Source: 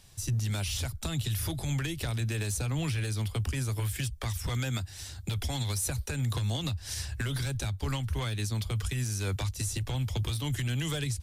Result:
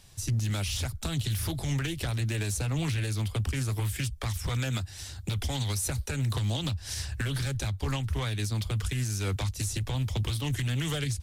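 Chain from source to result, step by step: Doppler distortion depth 0.29 ms; gain +1.5 dB

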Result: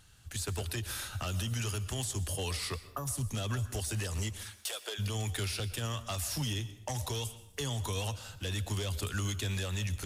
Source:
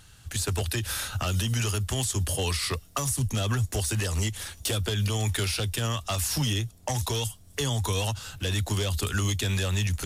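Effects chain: 2.79–3.07 spectral gain 1800–11000 Hz -17 dB; 4.43–4.98 HPF 900 Hz -> 360 Hz 24 dB/oct; reverb RT60 0.65 s, pre-delay 0.112 s, DRR 14 dB; gain -7.5 dB

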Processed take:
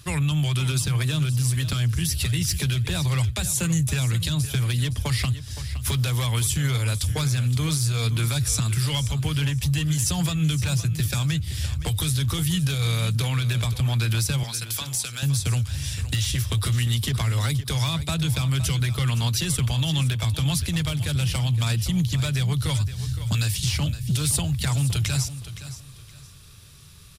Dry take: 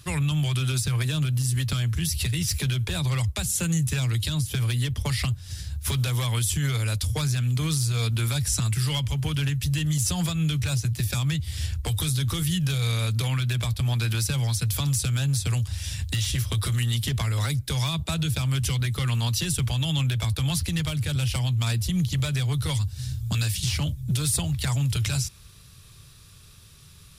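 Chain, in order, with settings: 14.43–15.23 HPF 1000 Hz 6 dB/oct; feedback echo 0.517 s, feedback 27%, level -13 dB; gain +1.5 dB

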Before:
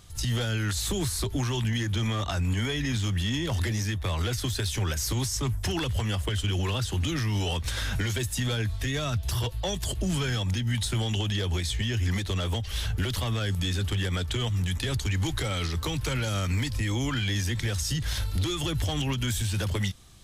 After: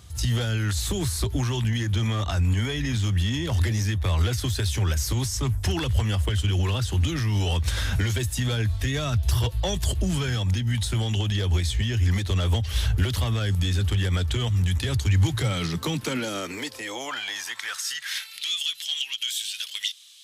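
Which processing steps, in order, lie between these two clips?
vocal rider 0.5 s; high-pass sweep 65 Hz -> 3200 Hz, 14.87–18.61; gain +1 dB

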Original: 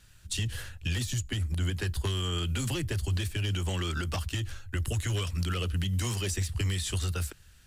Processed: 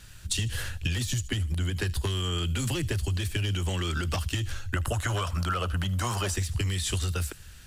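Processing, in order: 4.76–6.36 band shelf 920 Hz +12 dB; compressor, threshold -35 dBFS, peak gain reduction 11.5 dB; on a send: thin delay 77 ms, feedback 33%, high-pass 3500 Hz, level -15.5 dB; on the sum: gain +9 dB

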